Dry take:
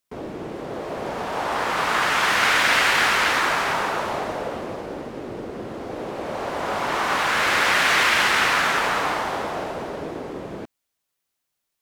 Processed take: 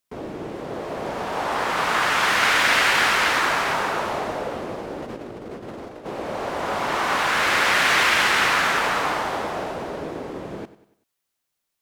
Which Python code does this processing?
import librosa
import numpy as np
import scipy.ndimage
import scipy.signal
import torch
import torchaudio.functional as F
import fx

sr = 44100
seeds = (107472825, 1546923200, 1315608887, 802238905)

p1 = fx.over_compress(x, sr, threshold_db=-35.0, ratio=-0.5, at=(5.02, 6.06))
y = p1 + fx.echo_feedback(p1, sr, ms=96, feedback_pct=44, wet_db=-16, dry=0)